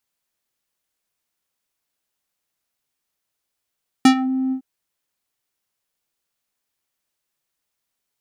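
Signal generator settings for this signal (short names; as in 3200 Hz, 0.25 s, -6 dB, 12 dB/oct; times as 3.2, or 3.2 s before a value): synth note square C4 12 dB/oct, low-pass 340 Hz, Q 1, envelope 5 oct, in 0.23 s, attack 4 ms, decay 0.09 s, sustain -13.5 dB, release 0.09 s, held 0.47 s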